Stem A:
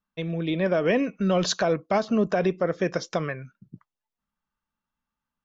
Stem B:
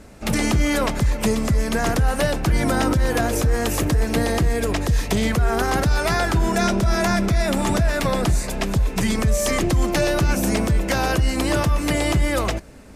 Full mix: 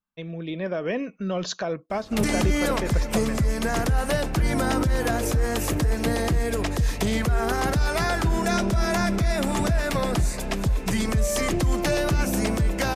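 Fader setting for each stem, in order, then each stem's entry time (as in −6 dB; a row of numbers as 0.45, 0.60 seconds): −5.0, −3.5 decibels; 0.00, 1.90 seconds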